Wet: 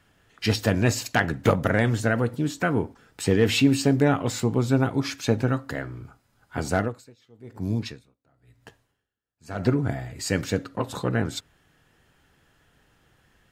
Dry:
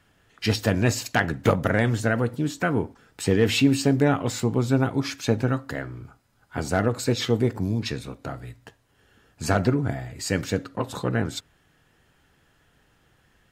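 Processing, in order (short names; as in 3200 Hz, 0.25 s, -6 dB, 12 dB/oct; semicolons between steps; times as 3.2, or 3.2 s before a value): 6.74–9.66 dB-linear tremolo 1 Hz, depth 34 dB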